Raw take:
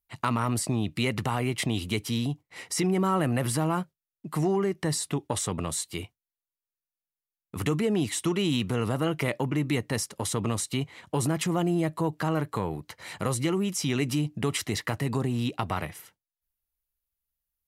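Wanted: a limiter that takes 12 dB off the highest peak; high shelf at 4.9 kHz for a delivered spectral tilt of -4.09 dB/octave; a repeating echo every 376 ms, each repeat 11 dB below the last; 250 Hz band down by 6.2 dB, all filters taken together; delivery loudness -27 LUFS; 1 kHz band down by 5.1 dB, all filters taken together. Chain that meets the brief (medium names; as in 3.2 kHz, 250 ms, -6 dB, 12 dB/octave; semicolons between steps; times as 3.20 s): peaking EQ 250 Hz -9 dB; peaking EQ 1 kHz -6.5 dB; treble shelf 4.9 kHz +8 dB; peak limiter -23.5 dBFS; feedback delay 376 ms, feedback 28%, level -11 dB; trim +6.5 dB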